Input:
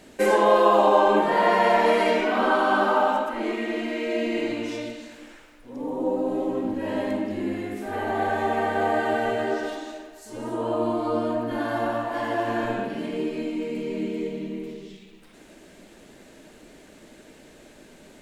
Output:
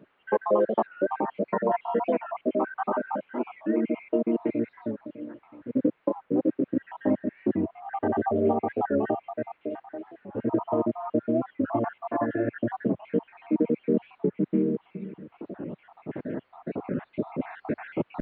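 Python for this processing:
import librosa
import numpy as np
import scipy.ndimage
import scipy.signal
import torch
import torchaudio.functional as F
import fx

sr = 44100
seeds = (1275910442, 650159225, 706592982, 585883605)

y = fx.spec_dropout(x, sr, seeds[0], share_pct=65)
y = fx.recorder_agc(y, sr, target_db=-13.0, rise_db_per_s=5.5, max_gain_db=30)
y = scipy.signal.sosfilt(scipy.signal.butter(4, 110.0, 'highpass', fs=sr, output='sos'), y)
y = fx.low_shelf(y, sr, hz=460.0, db=9.0)
y = fx.quant_companded(y, sr, bits=6)
y = fx.dmg_noise_colour(y, sr, seeds[1], colour='blue', level_db=-41.0)
y = scipy.ndimage.gaussian_filter1d(y, 4.6, mode='constant')
y = fx.record_warp(y, sr, rpm=45.0, depth_cents=160.0)
y = F.gain(torch.from_numpy(y), -5.5).numpy()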